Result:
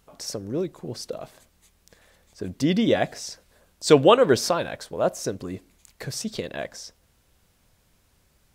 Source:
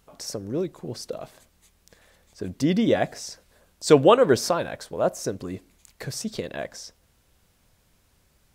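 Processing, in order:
dynamic equaliser 3,300 Hz, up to +4 dB, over −42 dBFS, Q 1.1

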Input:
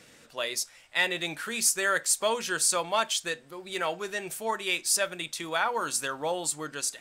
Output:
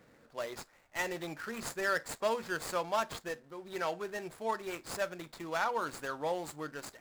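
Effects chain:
running median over 15 samples
level −3.5 dB

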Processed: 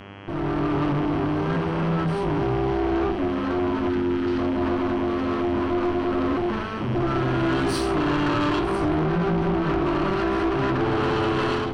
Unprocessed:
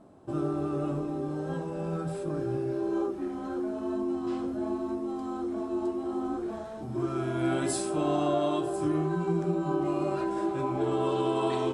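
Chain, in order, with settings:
lower of the sound and its delayed copy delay 0.68 ms
Savitzky-Golay smoothing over 15 samples
in parallel at +3 dB: brickwall limiter −26 dBFS, peak gain reduction 8 dB
on the sum: time-frequency box erased 0:03.90–0:04.38, 410–1,200 Hz
hum with harmonics 100 Hz, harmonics 33, −42 dBFS −3 dB per octave
soft clipping −24.5 dBFS, distortion −12 dB
automatic gain control gain up to 6 dB

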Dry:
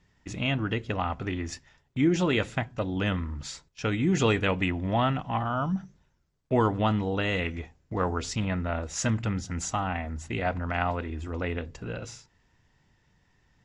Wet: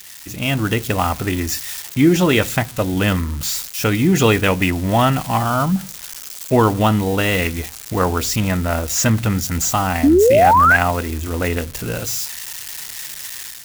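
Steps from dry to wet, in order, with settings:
spike at every zero crossing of −28 dBFS
sound drawn into the spectrogram rise, 0:10.03–0:10.77, 260–1,700 Hz −21 dBFS
automatic gain control gain up to 8 dB
level +2.5 dB

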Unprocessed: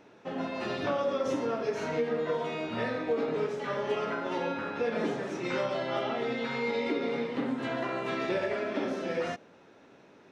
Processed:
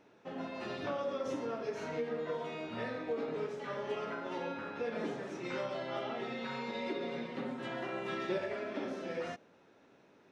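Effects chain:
0:06.19–0:08.38: comb filter 5.4 ms, depth 62%
level −7 dB

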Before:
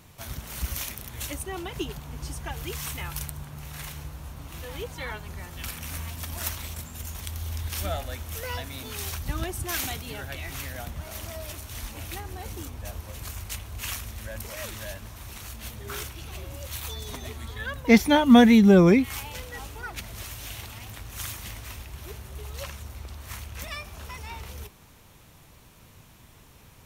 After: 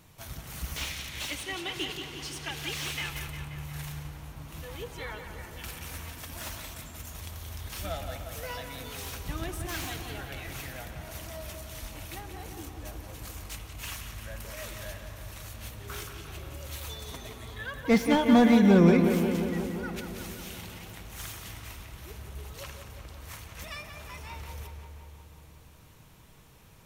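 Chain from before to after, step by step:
0:00.76–0:03.10: meter weighting curve D
feedback echo with a low-pass in the loop 177 ms, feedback 71%, low-pass 3,700 Hz, level −7 dB
rectangular room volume 3,100 cubic metres, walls mixed, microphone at 0.6 metres
slew-rate limiting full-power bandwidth 160 Hz
level −4.5 dB

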